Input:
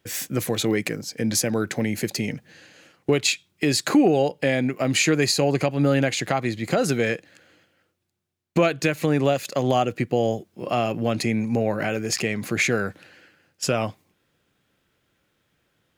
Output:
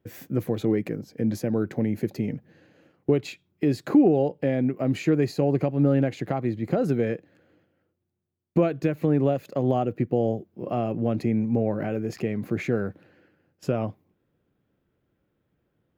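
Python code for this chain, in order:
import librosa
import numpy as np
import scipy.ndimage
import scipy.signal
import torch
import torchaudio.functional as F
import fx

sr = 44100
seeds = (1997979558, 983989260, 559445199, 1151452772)

y = fx.curve_eq(x, sr, hz=(360.0, 8800.0, 16000.0), db=(0, -24, -10))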